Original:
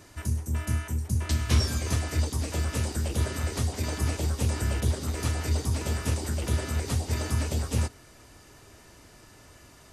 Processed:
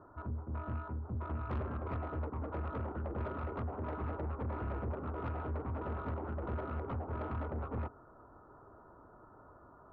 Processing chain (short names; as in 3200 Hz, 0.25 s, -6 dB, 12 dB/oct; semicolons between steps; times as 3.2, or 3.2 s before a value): Chebyshev low-pass 1400 Hz, order 6; low shelf 400 Hz -11 dB; soft clip -36 dBFS, distortion -11 dB; gain +3 dB